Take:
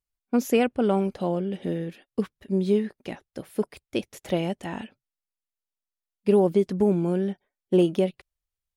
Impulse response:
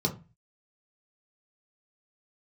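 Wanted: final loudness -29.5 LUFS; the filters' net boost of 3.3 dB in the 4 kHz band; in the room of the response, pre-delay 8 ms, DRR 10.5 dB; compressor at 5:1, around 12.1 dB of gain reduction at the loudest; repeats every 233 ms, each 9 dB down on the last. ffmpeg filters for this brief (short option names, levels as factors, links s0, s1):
-filter_complex "[0:a]equalizer=f=4000:t=o:g=5,acompressor=threshold=0.0355:ratio=5,aecho=1:1:233|466|699|932:0.355|0.124|0.0435|0.0152,asplit=2[s0][s1];[1:a]atrim=start_sample=2205,adelay=8[s2];[s1][s2]afir=irnorm=-1:irlink=0,volume=0.126[s3];[s0][s3]amix=inputs=2:normalize=0,volume=1.41"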